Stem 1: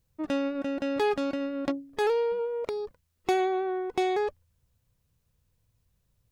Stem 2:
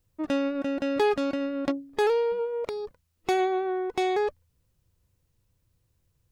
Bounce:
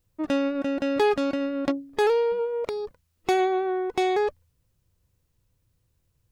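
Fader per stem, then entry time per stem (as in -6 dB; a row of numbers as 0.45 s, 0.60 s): -9.5 dB, 0.0 dB; 0.00 s, 0.00 s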